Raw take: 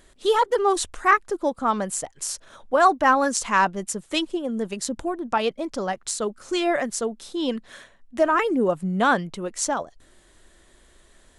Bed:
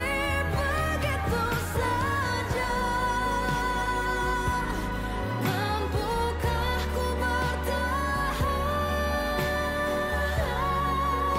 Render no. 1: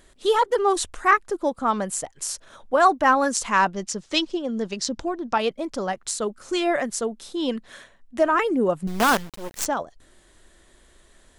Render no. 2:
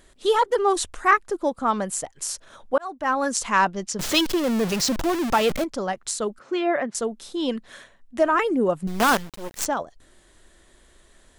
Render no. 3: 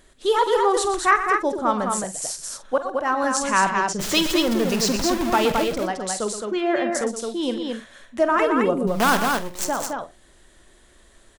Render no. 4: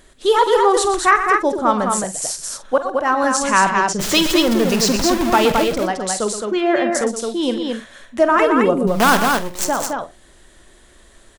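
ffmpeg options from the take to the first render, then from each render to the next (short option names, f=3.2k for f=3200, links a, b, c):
-filter_complex "[0:a]asettb=1/sr,asplit=3[a][b][c];[a]atrim=end=3.744[d];[b]atrim=start=3.74:end=5.38,asetpts=PTS-STARTPTS,afade=t=in:d=0.004:c=qsin,afade=t=out:st=1.636:d=0.004:c=qsin,lowpass=f=5.4k:t=q:w=2.3[e];[c]atrim=start=5.376[f];[d][e]acrossfade=d=0.004:c1=hsin:c2=qsin[g];[g][f]acrossfade=d=0.004:c1=qsin:c2=hsin,asettb=1/sr,asplit=3[h][i][j];[h]atrim=end=8.874[k];[i]atrim=start=8.87:end=9.66,asetpts=PTS-STARTPTS,afade=t=in:d=0.004:c=qsin,afade=t=out:st=0.786:d=0.004:c=qsin,acrusher=bits=4:dc=4:mix=0:aa=0.000001[l];[j]atrim=start=9.656[m];[k][l]acrossfade=d=0.004:c1=hsin:c2=qsin[n];[n][m]acrossfade=d=0.004:c1=qsin:c2=hsin"
-filter_complex "[0:a]asettb=1/sr,asplit=3[a][b][c];[a]atrim=end=3.994[d];[b]atrim=start=3.99:end=5.64,asetpts=PTS-STARTPTS,afade=t=in:d=0.004:c=qsin,afade=t=out:st=1.646:d=0.004:c=qsin,aeval=exprs='val(0)+0.5*0.075*sgn(val(0))':c=same[e];[c]atrim=start=5.636[f];[d][e]acrossfade=d=0.004:c1=hsin:c2=qsin[g];[g][f]acrossfade=d=0.004:c1=qsin:c2=hsin,asettb=1/sr,asplit=3[h][i][j];[h]atrim=end=6.394[k];[i]atrim=start=6.39:end=6.95,asetpts=PTS-STARTPTS,afade=t=in:d=0.004:c=qsin,afade=t=out:st=0.556:d=0.004:c=qsin,highpass=150,lowpass=2.5k[l];[j]atrim=start=6.946[m];[k][l]acrossfade=d=0.004:c1=hsin:c2=qsin[n];[n][m]acrossfade=d=0.004:c1=qsin:c2=hsin,asplit=2[o][p];[o]atrim=end=2.78,asetpts=PTS-STARTPTS,afade=t=out:st=2.776:d=0.004:c=hsin[q];[p]atrim=start=2.78,asetpts=PTS-STARTPTS,afade=t=in:d=0.6[r];[q][r]concat=n=2:v=0:a=1"
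-filter_complex "[0:a]asplit=2[a][b];[b]adelay=47,volume=-13dB[c];[a][c]amix=inputs=2:normalize=0,aecho=1:1:119.5|215.7:0.282|0.631"
-af "volume=5dB,alimiter=limit=-2dB:level=0:latency=1"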